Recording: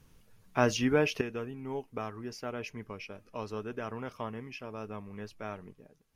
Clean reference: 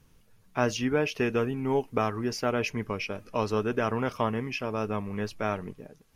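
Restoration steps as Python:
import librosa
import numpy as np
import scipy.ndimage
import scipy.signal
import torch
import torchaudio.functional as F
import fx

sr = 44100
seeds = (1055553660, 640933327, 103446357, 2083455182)

y = fx.fix_level(x, sr, at_s=1.21, step_db=10.5)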